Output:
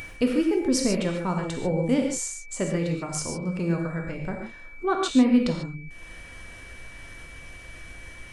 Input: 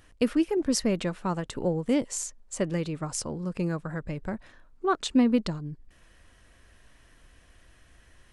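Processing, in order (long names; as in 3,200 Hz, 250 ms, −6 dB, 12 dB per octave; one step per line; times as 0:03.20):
upward compression, threshold −34 dBFS
steady tone 2,300 Hz −36 dBFS
reverb whose tail is shaped and stops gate 170 ms flat, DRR 1.5 dB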